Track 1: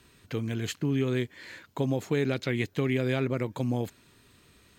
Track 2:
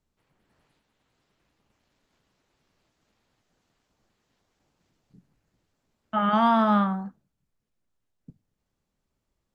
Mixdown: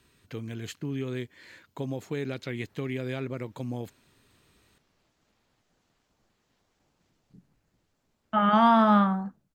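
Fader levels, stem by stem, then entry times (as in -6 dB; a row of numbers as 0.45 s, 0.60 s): -5.5 dB, +1.0 dB; 0.00 s, 2.20 s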